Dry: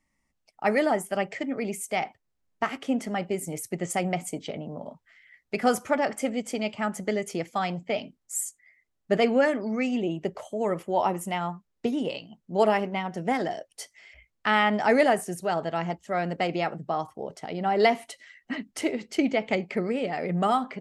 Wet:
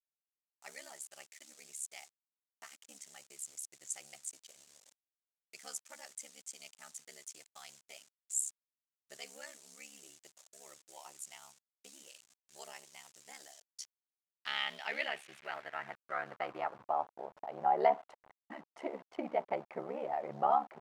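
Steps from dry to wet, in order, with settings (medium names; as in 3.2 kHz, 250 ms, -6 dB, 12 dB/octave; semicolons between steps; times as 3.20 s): send-on-delta sampling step -37.5 dBFS; band-pass sweep 7.3 kHz -> 820 Hz, 13.44–17.02 s; ring modulator 35 Hz; trim +1 dB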